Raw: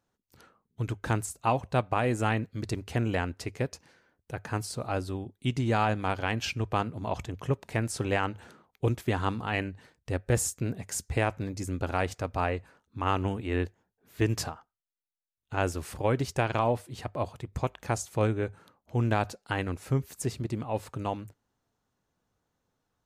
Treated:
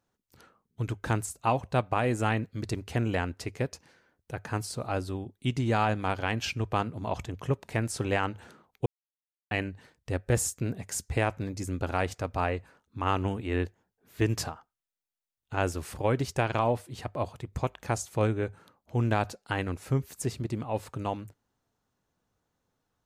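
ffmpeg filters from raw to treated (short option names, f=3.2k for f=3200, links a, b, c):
-filter_complex "[0:a]asplit=3[a][b][c];[a]atrim=end=8.86,asetpts=PTS-STARTPTS,afade=t=out:st=8.856:d=0.004:c=hsin[d];[b]atrim=start=8.86:end=9.51,asetpts=PTS-STARTPTS,volume=0[e];[c]atrim=start=9.51,asetpts=PTS-STARTPTS,afade=t=in:d=0.004:c=hsin[f];[d][e][f]concat=n=3:v=0:a=1"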